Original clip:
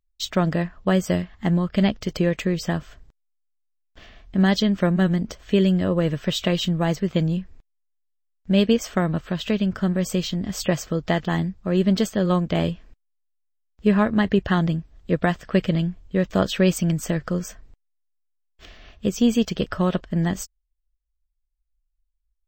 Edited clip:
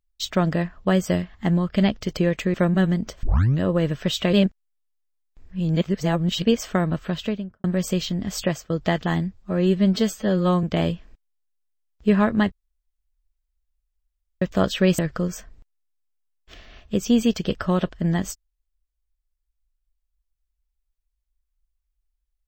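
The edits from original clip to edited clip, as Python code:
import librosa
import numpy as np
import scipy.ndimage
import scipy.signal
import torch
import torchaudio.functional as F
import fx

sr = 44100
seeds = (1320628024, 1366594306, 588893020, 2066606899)

y = fx.studio_fade_out(x, sr, start_s=9.33, length_s=0.53)
y = fx.edit(y, sr, fx.cut(start_s=2.54, length_s=2.22),
    fx.tape_start(start_s=5.45, length_s=0.38),
    fx.reverse_span(start_s=6.55, length_s=2.09),
    fx.fade_out_to(start_s=10.56, length_s=0.36, curve='qsin', floor_db=-17.5),
    fx.stretch_span(start_s=11.55, length_s=0.87, factor=1.5),
    fx.room_tone_fill(start_s=14.3, length_s=1.9),
    fx.cut(start_s=16.77, length_s=0.33), tone=tone)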